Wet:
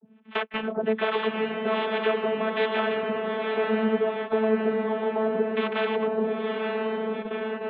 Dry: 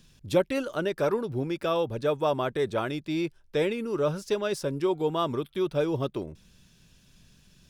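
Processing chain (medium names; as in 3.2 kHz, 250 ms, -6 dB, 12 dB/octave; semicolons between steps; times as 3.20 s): CVSD coder 16 kbps; harmonic tremolo 1.3 Hz, depth 100%, crossover 580 Hz; compression 3:1, threshold -39 dBFS, peak gain reduction 10.5 dB; vocoder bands 32, saw 219 Hz; 3.03–5.52 s: steep low-pass 880 Hz 36 dB/octave; dynamic bell 420 Hz, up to +4 dB, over -47 dBFS, Q 3.9; echo that smears into a reverb 915 ms, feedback 55%, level -6 dB; gate -50 dBFS, range -20 dB; spectrum-flattening compressor 2:1; trim +9 dB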